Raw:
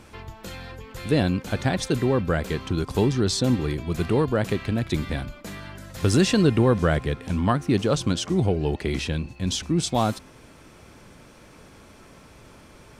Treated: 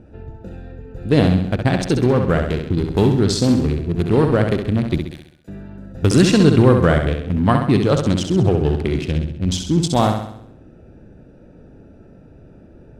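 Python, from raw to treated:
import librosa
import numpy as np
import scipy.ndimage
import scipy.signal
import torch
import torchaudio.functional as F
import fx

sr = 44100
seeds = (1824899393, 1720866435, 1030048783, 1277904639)

y = fx.wiener(x, sr, points=41)
y = fx.differentiator(y, sr, at=(4.98, 5.48))
y = fx.room_flutter(y, sr, wall_m=11.3, rt60_s=0.67)
y = F.gain(torch.from_numpy(y), 6.0).numpy()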